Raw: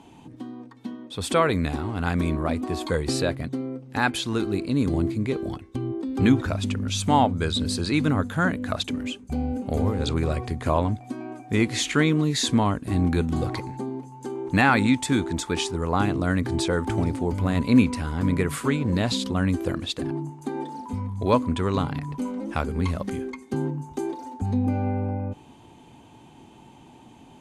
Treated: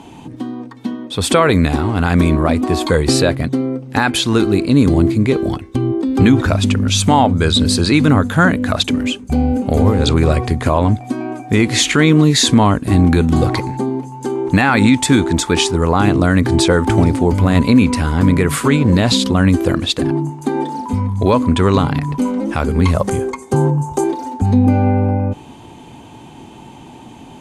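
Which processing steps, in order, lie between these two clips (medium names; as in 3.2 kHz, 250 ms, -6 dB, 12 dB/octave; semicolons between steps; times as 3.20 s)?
22.94–24.04 s: graphic EQ 125/250/500/1000/2000/4000/8000 Hz +7/-9/+6/+5/-4/-4/+8 dB; loudness maximiser +13 dB; trim -1 dB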